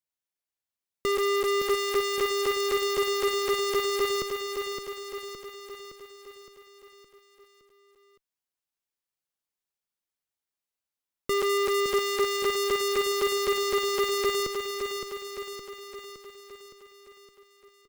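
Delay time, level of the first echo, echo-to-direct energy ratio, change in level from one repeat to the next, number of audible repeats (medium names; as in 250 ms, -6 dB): 565 ms, -6.0 dB, -4.5 dB, -5.0 dB, 6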